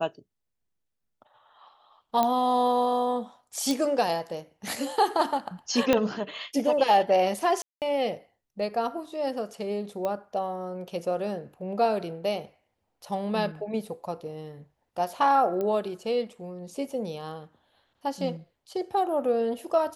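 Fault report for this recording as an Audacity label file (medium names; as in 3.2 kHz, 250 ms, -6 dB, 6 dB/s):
2.230000	2.230000	pop -11 dBFS
3.710000	3.710000	pop
5.930000	5.930000	pop -8 dBFS
7.620000	7.820000	dropout 198 ms
10.050000	10.050000	pop -18 dBFS
15.610000	15.610000	pop -19 dBFS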